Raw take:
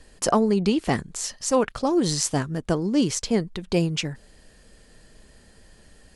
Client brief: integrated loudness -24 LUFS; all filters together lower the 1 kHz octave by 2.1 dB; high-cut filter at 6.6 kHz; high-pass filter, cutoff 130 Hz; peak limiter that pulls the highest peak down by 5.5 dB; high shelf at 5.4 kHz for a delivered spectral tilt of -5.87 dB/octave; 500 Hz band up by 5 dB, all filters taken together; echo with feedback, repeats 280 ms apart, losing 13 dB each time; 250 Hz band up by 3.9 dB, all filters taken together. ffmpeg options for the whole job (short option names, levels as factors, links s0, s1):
-af "highpass=130,lowpass=6600,equalizer=f=250:t=o:g=4,equalizer=f=500:t=o:g=6,equalizer=f=1000:t=o:g=-5.5,highshelf=f=5400:g=-4.5,alimiter=limit=0.282:level=0:latency=1,aecho=1:1:280|560|840:0.224|0.0493|0.0108,volume=0.841"